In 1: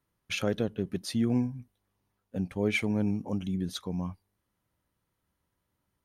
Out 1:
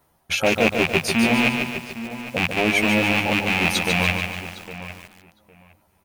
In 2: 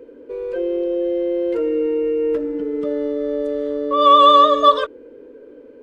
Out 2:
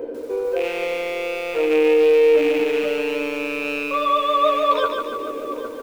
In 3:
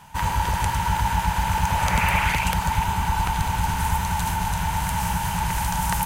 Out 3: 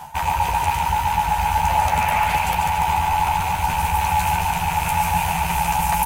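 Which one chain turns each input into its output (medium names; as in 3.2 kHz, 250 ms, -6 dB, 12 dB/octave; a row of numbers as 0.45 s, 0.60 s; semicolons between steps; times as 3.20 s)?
rattle on loud lows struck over -32 dBFS, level -16 dBFS; in parallel at -1.5 dB: peak limiter -12.5 dBFS; on the sum: treble shelf 9.9 kHz +7 dB; reverb removal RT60 0.62 s; reverse; compression 5:1, threshold -27 dBFS; reverse; peaking EQ 740 Hz +12.5 dB 0.71 oct; hum notches 50/100/150/200/250 Hz; doubling 13 ms -5 dB; filtered feedback delay 808 ms, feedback 18%, low-pass 2.2 kHz, level -12.5 dB; bit-crushed delay 145 ms, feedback 55%, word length 8-bit, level -5 dB; normalise loudness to -20 LUFS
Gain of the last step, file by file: +8.5 dB, +2.5 dB, +2.5 dB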